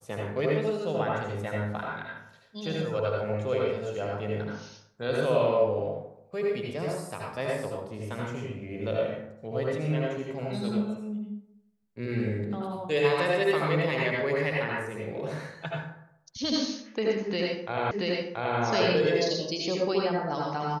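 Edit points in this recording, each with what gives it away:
0:17.91: the same again, the last 0.68 s

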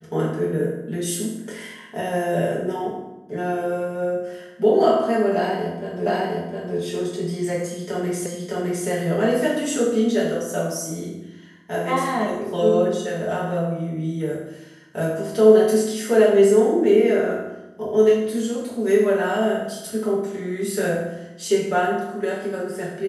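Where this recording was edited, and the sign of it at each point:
0:06.06: the same again, the last 0.71 s
0:08.26: the same again, the last 0.61 s

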